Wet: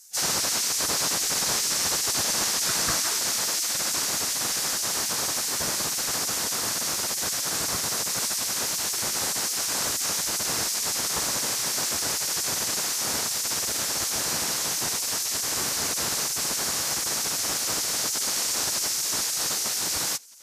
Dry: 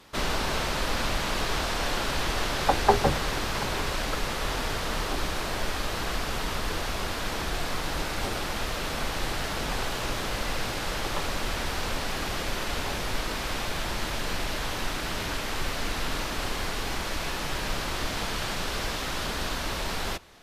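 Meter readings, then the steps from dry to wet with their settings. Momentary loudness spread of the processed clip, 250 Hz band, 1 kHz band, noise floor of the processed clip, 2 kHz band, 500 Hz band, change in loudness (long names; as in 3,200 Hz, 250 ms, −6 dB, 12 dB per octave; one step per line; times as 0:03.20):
2 LU, −4.0 dB, −3.5 dB, −29 dBFS, −1.5 dB, −4.5 dB, +6.0 dB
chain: gate on every frequency bin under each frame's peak −15 dB weak
high shelf with overshoot 4,500 Hz +11.5 dB, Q 1.5
level +2 dB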